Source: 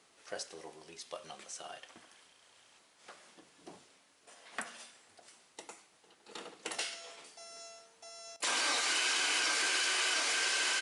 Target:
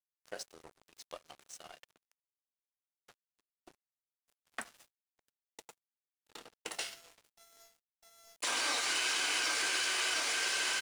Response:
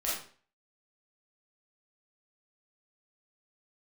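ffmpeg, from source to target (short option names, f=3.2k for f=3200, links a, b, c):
-af "aeval=exprs='sgn(val(0))*max(abs(val(0))-0.00398,0)':c=same"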